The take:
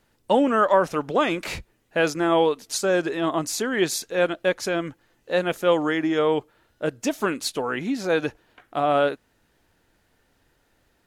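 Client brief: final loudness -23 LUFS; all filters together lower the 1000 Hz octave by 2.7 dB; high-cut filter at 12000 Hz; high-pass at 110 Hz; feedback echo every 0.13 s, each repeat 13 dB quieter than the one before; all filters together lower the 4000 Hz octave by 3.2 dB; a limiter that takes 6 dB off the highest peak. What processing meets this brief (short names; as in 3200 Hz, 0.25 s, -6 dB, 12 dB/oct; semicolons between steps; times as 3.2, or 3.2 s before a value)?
HPF 110 Hz; LPF 12000 Hz; bell 1000 Hz -3.5 dB; bell 4000 Hz -4 dB; limiter -14 dBFS; feedback echo 0.13 s, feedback 22%, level -13 dB; gain +3 dB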